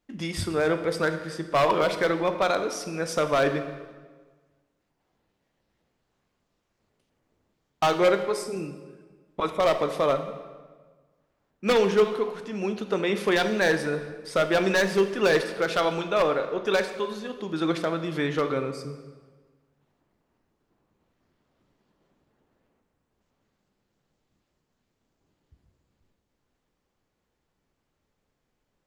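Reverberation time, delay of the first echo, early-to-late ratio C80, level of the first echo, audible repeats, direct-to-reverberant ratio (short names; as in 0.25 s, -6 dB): 1.5 s, none, 11.5 dB, none, none, 7.5 dB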